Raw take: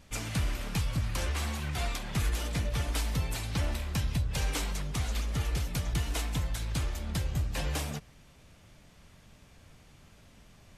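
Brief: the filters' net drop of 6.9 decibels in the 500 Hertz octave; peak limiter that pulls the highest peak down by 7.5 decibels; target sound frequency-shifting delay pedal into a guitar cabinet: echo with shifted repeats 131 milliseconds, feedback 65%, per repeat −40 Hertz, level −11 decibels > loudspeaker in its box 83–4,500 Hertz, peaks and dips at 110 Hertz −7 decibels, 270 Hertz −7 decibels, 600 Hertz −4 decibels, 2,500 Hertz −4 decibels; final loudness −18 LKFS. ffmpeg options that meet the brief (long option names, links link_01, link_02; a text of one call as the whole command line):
ffmpeg -i in.wav -filter_complex "[0:a]equalizer=frequency=500:width_type=o:gain=-6,alimiter=level_in=4dB:limit=-24dB:level=0:latency=1,volume=-4dB,asplit=9[link_01][link_02][link_03][link_04][link_05][link_06][link_07][link_08][link_09];[link_02]adelay=131,afreqshift=-40,volume=-11dB[link_10];[link_03]adelay=262,afreqshift=-80,volume=-14.7dB[link_11];[link_04]adelay=393,afreqshift=-120,volume=-18.5dB[link_12];[link_05]adelay=524,afreqshift=-160,volume=-22.2dB[link_13];[link_06]adelay=655,afreqshift=-200,volume=-26dB[link_14];[link_07]adelay=786,afreqshift=-240,volume=-29.7dB[link_15];[link_08]adelay=917,afreqshift=-280,volume=-33.5dB[link_16];[link_09]adelay=1048,afreqshift=-320,volume=-37.2dB[link_17];[link_01][link_10][link_11][link_12][link_13][link_14][link_15][link_16][link_17]amix=inputs=9:normalize=0,highpass=83,equalizer=frequency=110:width_type=q:width=4:gain=-7,equalizer=frequency=270:width_type=q:width=4:gain=-7,equalizer=frequency=600:width_type=q:width=4:gain=-4,equalizer=frequency=2500:width_type=q:width=4:gain=-4,lowpass=frequency=4500:width=0.5412,lowpass=frequency=4500:width=1.3066,volume=23.5dB" out.wav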